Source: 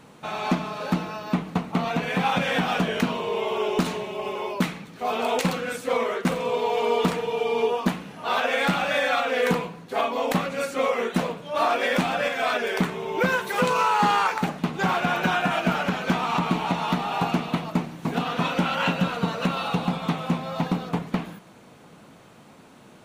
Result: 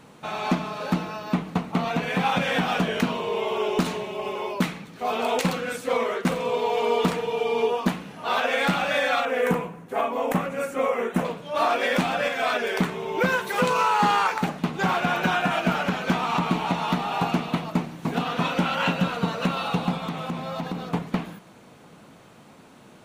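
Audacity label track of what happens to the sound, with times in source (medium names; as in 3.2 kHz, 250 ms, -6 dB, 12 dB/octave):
9.250000	11.250000	peaking EQ 4.3 kHz -13.5 dB 0.95 oct
20.040000	20.890000	compression, threshold -25 dBFS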